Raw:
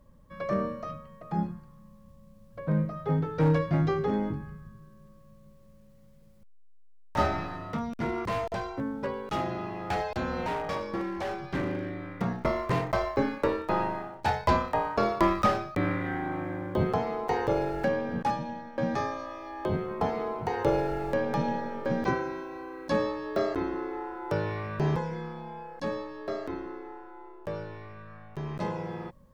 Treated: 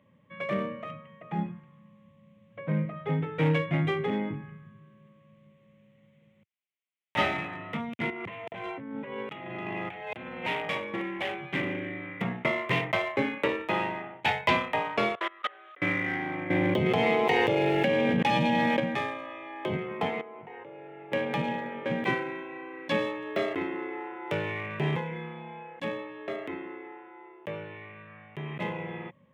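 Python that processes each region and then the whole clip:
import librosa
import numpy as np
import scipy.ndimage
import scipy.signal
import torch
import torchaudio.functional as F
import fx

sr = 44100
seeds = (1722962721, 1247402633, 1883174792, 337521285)

y = fx.chain(x, sr, fx.air_absorb(metres=67.0),
    fx.over_compress(threshold_db=-37.0, ratio=-1.0), at=(8.1, 10.45))
y = fx.chain(y, sr, fx.delta_mod(bps=64000, step_db=-42.0),
    fx.level_steps(step_db=23),
    fx.cabinet(low_hz=470.0, low_slope=24, high_hz=4100.0, hz=(580.0, 870.0, 1500.0, 2400.0), db=(-6, -7, 6, -10)), at=(15.15, 15.82))
y = fx.chain(y, sr, fx.peak_eq(hz=1300.0, db=-6.0, octaves=1.1),
    fx.env_flatten(amount_pct=100), at=(16.5, 18.8))
y = fx.chain(y, sr, fx.high_shelf(hz=2600.0, db=-10.5),
    fx.level_steps(step_db=21),
    fx.highpass(hz=240.0, slope=6), at=(20.21, 21.12))
y = fx.wiener(y, sr, points=9)
y = scipy.signal.sosfilt(scipy.signal.butter(4, 110.0, 'highpass', fs=sr, output='sos'), y)
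y = fx.band_shelf(y, sr, hz=2600.0, db=14.5, octaves=1.1)
y = y * 10.0 ** (-1.5 / 20.0)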